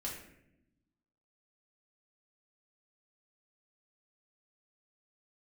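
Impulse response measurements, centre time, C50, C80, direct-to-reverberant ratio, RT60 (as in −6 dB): 40 ms, 4.0 dB, 7.0 dB, −4.0 dB, 0.80 s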